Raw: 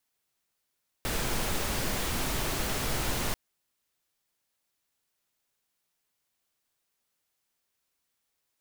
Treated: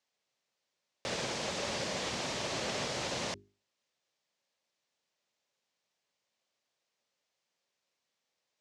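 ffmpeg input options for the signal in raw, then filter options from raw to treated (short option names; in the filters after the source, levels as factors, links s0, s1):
-f lavfi -i "anoisesrc=c=pink:a=0.162:d=2.29:r=44100:seed=1"
-filter_complex "[0:a]bandreject=f=50:t=h:w=6,bandreject=f=100:t=h:w=6,bandreject=f=150:t=h:w=6,bandreject=f=200:t=h:w=6,bandreject=f=250:t=h:w=6,bandreject=f=300:t=h:w=6,bandreject=f=350:t=h:w=6,bandreject=f=400:t=h:w=6,acrossover=split=3600[s0][s1];[s0]alimiter=level_in=1.5:limit=0.0631:level=0:latency=1:release=21,volume=0.668[s2];[s2][s1]amix=inputs=2:normalize=0,highpass=140,equalizer=f=300:t=q:w=4:g=-3,equalizer=f=560:t=q:w=4:g=6,equalizer=f=1400:t=q:w=4:g=-4,lowpass=f=6600:w=0.5412,lowpass=f=6600:w=1.3066"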